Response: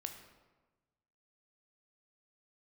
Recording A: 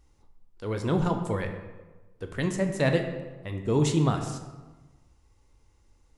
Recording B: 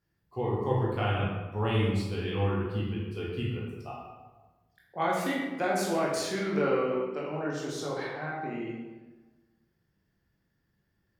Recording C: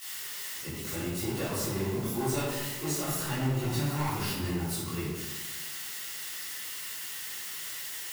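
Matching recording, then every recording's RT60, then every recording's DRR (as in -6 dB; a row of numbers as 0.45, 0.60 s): A; 1.2, 1.2, 1.2 s; 4.5, -5.0, -13.0 dB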